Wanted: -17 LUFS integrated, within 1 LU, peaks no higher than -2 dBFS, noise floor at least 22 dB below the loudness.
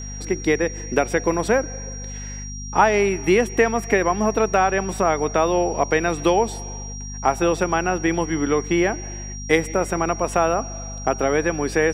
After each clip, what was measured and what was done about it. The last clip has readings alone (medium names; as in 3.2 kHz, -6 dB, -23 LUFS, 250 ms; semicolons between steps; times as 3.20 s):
hum 50 Hz; highest harmonic 250 Hz; hum level -31 dBFS; steady tone 5.7 kHz; tone level -35 dBFS; loudness -21.0 LUFS; peak level -2.5 dBFS; loudness target -17.0 LUFS
-> hum notches 50/100/150/200/250 Hz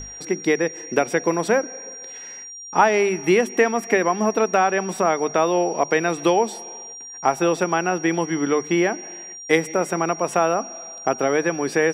hum not found; steady tone 5.7 kHz; tone level -35 dBFS
-> band-stop 5.7 kHz, Q 30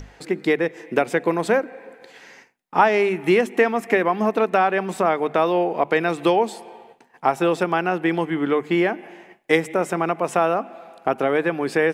steady tone not found; loudness -21.0 LUFS; peak level -3.0 dBFS; loudness target -17.0 LUFS
-> trim +4 dB; peak limiter -2 dBFS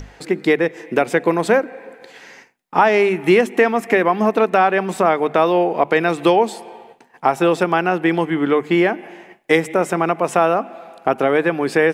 loudness -17.5 LUFS; peak level -2.0 dBFS; noise floor -51 dBFS